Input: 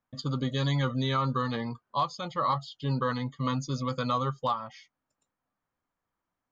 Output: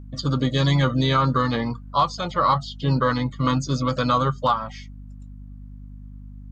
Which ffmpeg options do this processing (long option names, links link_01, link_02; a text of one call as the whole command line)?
ffmpeg -i in.wav -filter_complex "[0:a]aeval=exprs='val(0)+0.00501*(sin(2*PI*50*n/s)+sin(2*PI*2*50*n/s)/2+sin(2*PI*3*50*n/s)/3+sin(2*PI*4*50*n/s)/4+sin(2*PI*5*50*n/s)/5)':channel_layout=same,asplit=2[link_01][link_02];[link_02]asetrate=52444,aresample=44100,atempo=0.840896,volume=-15dB[link_03];[link_01][link_03]amix=inputs=2:normalize=0,volume=8dB" out.wav